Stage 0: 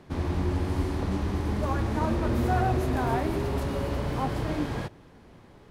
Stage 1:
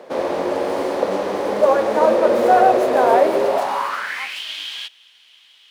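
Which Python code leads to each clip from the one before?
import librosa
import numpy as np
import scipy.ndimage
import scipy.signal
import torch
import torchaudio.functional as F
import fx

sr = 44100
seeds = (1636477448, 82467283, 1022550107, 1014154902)

y = scipy.signal.medfilt(x, 3)
y = fx.peak_eq(y, sr, hz=210.0, db=7.0, octaves=0.43)
y = fx.filter_sweep_highpass(y, sr, from_hz=530.0, to_hz=3100.0, start_s=3.46, end_s=4.43, q=5.5)
y = y * librosa.db_to_amplitude(9.0)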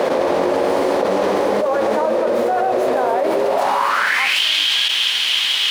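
y = fx.env_flatten(x, sr, amount_pct=100)
y = y * librosa.db_to_amplitude(-7.0)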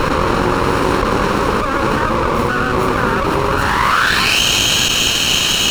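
y = fx.lower_of_two(x, sr, delay_ms=0.73)
y = y * librosa.db_to_amplitude(5.0)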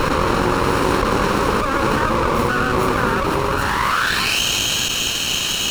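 y = fx.high_shelf(x, sr, hz=6100.0, db=4.5)
y = fx.rider(y, sr, range_db=10, speed_s=2.0)
y = y * librosa.db_to_amplitude(-4.5)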